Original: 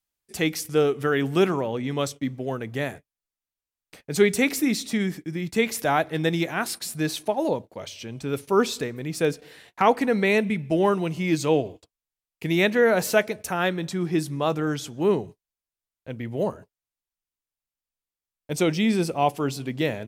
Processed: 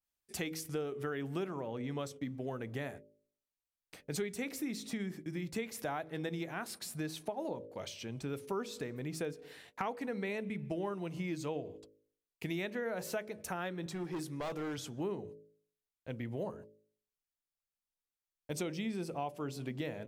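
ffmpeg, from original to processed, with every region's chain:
-filter_complex "[0:a]asettb=1/sr,asplit=3[a][b][c];[a]atrim=end=13.864[d];[b]atrim=start=13.86:end=14.78,asetpts=PTS-STARTPTS,afade=t=in:d=0.004:c=qsin,afade=t=out:st=0.916:d=0.004:c=qsin,highpass=f=280:p=1,asoftclip=type=hard:threshold=-27dB[e];[c]atrim=start=14.776[f];[d][e]acrossfade=d=0.004:c1=hsin:c2=qsin[g];[g][f]acrossfade=d=0.004:c1=qsin:c2=hsin,bandreject=f=53.23:t=h:w=4,bandreject=f=106.46:t=h:w=4,bandreject=f=159.69:t=h:w=4,bandreject=f=212.92:t=h:w=4,bandreject=f=266.15:t=h:w=4,bandreject=f=319.38:t=h:w=4,bandreject=f=372.61:t=h:w=4,bandreject=f=425.84:t=h:w=4,bandreject=f=479.07:t=h:w=4,bandreject=f=532.3:t=h:w=4,bandreject=f=585.53:t=h:w=4,acompressor=threshold=-30dB:ratio=5,adynamicequalizer=threshold=0.00398:dfrequency=2000:dqfactor=0.7:tfrequency=2000:tqfactor=0.7:attack=5:release=100:ratio=0.375:range=2:mode=cutabove:tftype=highshelf,volume=-5.5dB"

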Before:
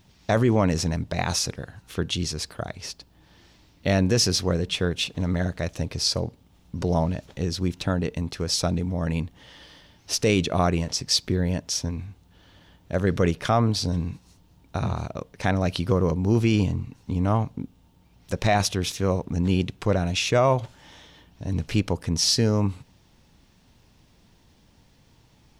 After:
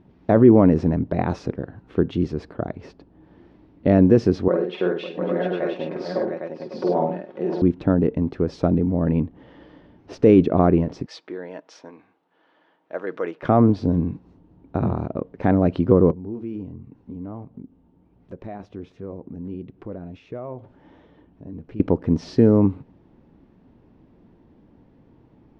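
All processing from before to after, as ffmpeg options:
-filter_complex "[0:a]asettb=1/sr,asplit=3[a][b][c];[a]atrim=end=4.484[d];[b]atrim=start=4.48:end=7.62,asetpts=PTS-STARTPTS,afade=t=in:d=0.004:c=qsin,afade=t=out:st=3.136:d=0.004:c=qsin,highpass=440,lowpass=5.2k,aecho=1:1:5.5:0.56,atrim=end_sample=138474,aecho=1:1:50|100|125|549|703|806:0.668|0.2|0.126|0.2|0.531|0.531,atrim=end_sample=138474[e];[c]atrim=start=7.616[f];[d][e]acrossfade=d=0.004:c1=hsin:c2=qsin[g];[g][f]acrossfade=d=0.004:c1=qsin:c2=hsin,asettb=1/sr,asplit=3[h][i][j];[h]atrim=end=11.064[k];[i]atrim=start=11.06:end=13.43,asetpts=PTS-STARTPTS,afade=t=in:d=0.004:c=qsin,afade=t=out:st=2.366:d=0.004:c=qsin,highpass=840,aecho=1:1:6.3:0.3,atrim=end_sample=104517[l];[j]atrim=start=13.426[m];[k][l]acrossfade=d=0.004:c1=hsin:c2=qsin[n];[n][m]acrossfade=d=0.004:c1=qsin:c2=hsin,asettb=1/sr,asplit=3[o][p][q];[o]atrim=end=16.114[r];[p]atrim=start=16.11:end=21.8,asetpts=PTS-STARTPTS,afade=t=in:d=0.004:c=qsin,afade=t=out:st=5.686:d=0.004:c=qsin,flanger=delay=1.5:depth=3.4:regen=-75:speed=1.4:shape=sinusoidal,acompressor=threshold=-47dB:ratio=2:attack=3.2:release=140:knee=1:detection=peak[s];[q]atrim=start=21.796[t];[r][s]acrossfade=d=0.004:c1=hsin:c2=qsin[u];[u][t]acrossfade=d=0.004:c1=qsin:c2=hsin,lowpass=1.6k,equalizer=f=310:w=0.75:g=13,volume=-1.5dB"

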